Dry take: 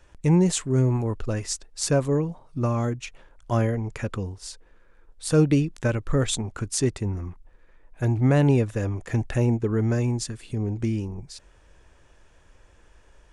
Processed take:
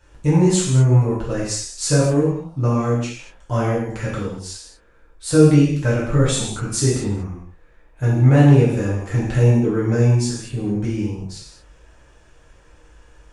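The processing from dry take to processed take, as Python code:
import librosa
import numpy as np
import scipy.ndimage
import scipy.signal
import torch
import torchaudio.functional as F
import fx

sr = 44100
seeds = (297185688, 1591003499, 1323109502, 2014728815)

y = fx.rev_gated(x, sr, seeds[0], gate_ms=270, shape='falling', drr_db=-8.0)
y = y * 10.0 ** (-3.0 / 20.0)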